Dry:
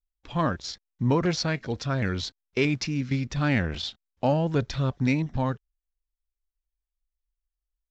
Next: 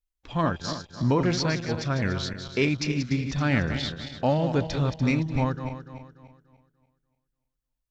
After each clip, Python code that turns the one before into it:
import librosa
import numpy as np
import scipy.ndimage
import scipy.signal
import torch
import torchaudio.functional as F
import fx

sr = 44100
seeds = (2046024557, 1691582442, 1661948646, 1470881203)

y = fx.reverse_delay_fb(x, sr, ms=146, feedback_pct=60, wet_db=-8.5)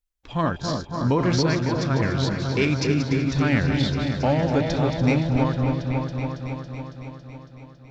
y = fx.echo_opening(x, sr, ms=277, hz=750, octaves=1, feedback_pct=70, wet_db=-3)
y = F.gain(torch.from_numpy(y), 1.5).numpy()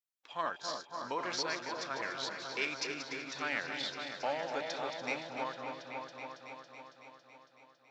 y = scipy.signal.sosfilt(scipy.signal.butter(2, 720.0, 'highpass', fs=sr, output='sos'), x)
y = F.gain(torch.from_numpy(y), -7.5).numpy()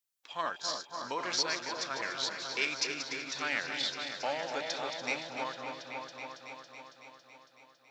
y = fx.high_shelf(x, sr, hz=2900.0, db=8.5)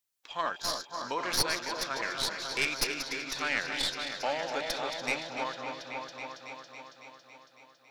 y = fx.tracing_dist(x, sr, depth_ms=0.061)
y = F.gain(torch.from_numpy(y), 2.5).numpy()